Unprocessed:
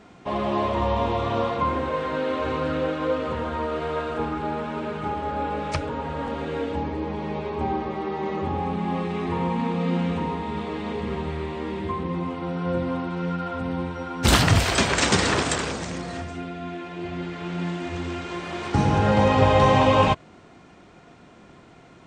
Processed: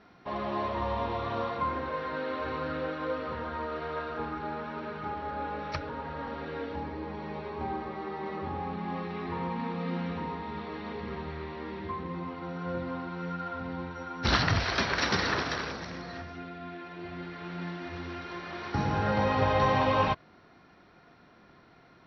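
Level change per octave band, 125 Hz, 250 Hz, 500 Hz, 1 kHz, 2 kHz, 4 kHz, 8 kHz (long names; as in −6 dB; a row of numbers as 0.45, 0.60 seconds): −9.5, −9.5, −8.5, −6.5, −5.0, −7.5, −16.5 decibels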